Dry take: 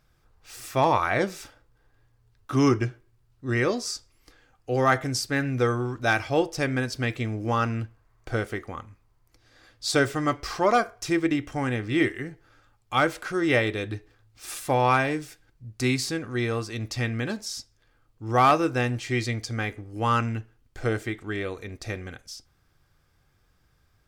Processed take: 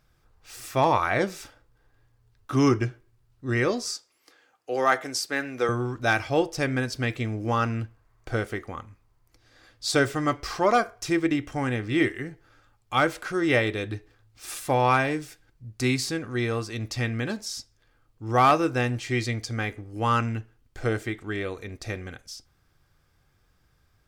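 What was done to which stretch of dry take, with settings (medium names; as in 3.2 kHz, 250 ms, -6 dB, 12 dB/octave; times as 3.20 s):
3.95–5.69 s: high-pass 360 Hz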